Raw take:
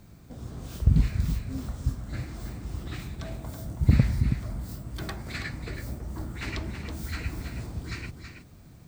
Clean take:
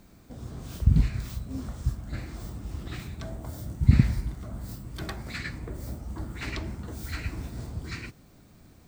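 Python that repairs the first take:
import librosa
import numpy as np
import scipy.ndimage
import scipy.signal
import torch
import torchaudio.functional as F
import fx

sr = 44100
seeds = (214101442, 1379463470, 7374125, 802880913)

y = fx.fix_declip(x, sr, threshold_db=-9.0)
y = fx.noise_reduce(y, sr, print_start_s=8.36, print_end_s=8.86, reduce_db=8.0)
y = fx.fix_echo_inverse(y, sr, delay_ms=325, level_db=-8.0)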